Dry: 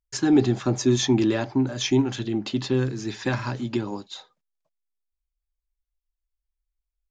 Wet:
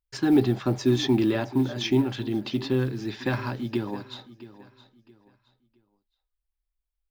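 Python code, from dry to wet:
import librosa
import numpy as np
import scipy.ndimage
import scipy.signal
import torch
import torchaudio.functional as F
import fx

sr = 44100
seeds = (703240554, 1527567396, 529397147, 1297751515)

p1 = x + fx.echo_feedback(x, sr, ms=668, feedback_pct=29, wet_db=-17, dry=0)
p2 = fx.quant_float(p1, sr, bits=4)
p3 = fx.peak_eq(p2, sr, hz=6700.0, db=-13.5, octaves=0.4)
y = p3 * librosa.db_to_amplitude(-1.5)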